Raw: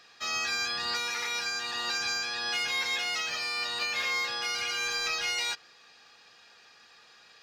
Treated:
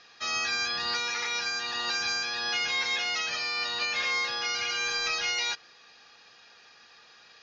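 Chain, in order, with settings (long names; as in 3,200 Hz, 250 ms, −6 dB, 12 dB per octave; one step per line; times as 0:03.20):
Butterworth low-pass 6,900 Hz 96 dB per octave
level +1.5 dB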